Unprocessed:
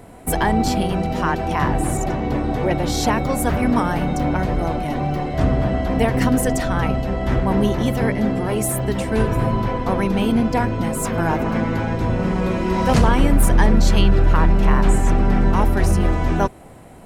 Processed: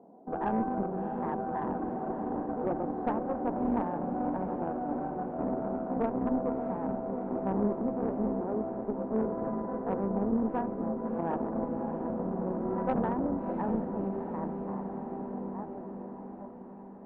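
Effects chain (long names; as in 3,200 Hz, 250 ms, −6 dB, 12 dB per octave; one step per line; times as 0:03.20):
fade-out on the ending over 3.99 s
Chebyshev band-pass filter 200–880 Hz, order 3
tube saturation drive 14 dB, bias 0.75
feedback delay with all-pass diffusion 673 ms, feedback 67%, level −10 dB
level −6 dB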